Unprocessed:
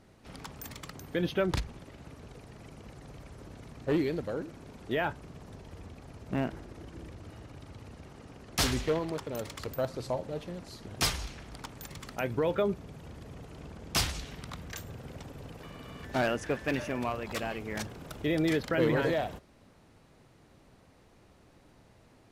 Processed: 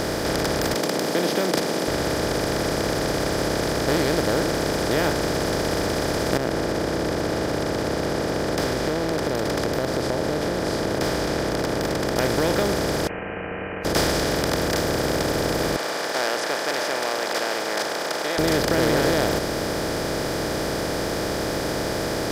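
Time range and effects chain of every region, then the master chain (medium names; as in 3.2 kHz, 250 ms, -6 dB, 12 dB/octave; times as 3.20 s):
0.74–1.88 s: steep high-pass 200 Hz 48 dB/octave + peaking EQ 1.5 kHz -13 dB 0.83 oct
6.37–12.16 s: band-pass filter 290 Hz, Q 0.59 + compression 3:1, threshold -46 dBFS
13.07–13.85 s: feedback comb 280 Hz, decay 0.36 s, mix 100% + frequency inversion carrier 2.7 kHz
15.76–18.39 s: steep high-pass 780 Hz + distance through air 110 m
whole clip: spectral levelling over time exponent 0.2; band-stop 2.7 kHz, Q 8.4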